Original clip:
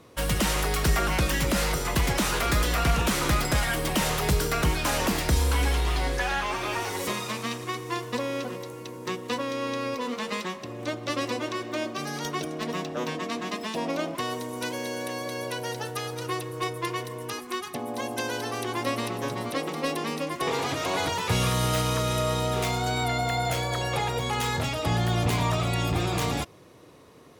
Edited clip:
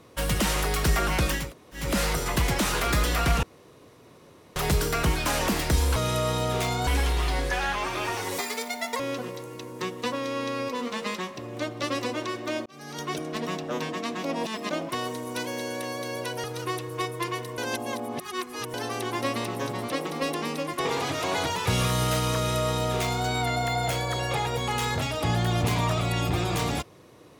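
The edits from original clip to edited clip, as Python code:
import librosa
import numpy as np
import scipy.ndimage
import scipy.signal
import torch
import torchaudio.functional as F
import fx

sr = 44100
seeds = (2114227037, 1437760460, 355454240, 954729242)

y = fx.edit(x, sr, fx.insert_room_tone(at_s=1.42, length_s=0.41, crossfade_s=0.24),
    fx.room_tone_fill(start_s=3.02, length_s=1.13),
    fx.speed_span(start_s=7.06, length_s=1.2, speed=1.94),
    fx.fade_in_span(start_s=11.92, length_s=0.48),
    fx.reverse_span(start_s=13.5, length_s=0.47),
    fx.cut(start_s=15.7, length_s=0.36),
    fx.reverse_span(start_s=17.2, length_s=1.16),
    fx.duplicate(start_s=21.98, length_s=0.91, to_s=5.55), tone=tone)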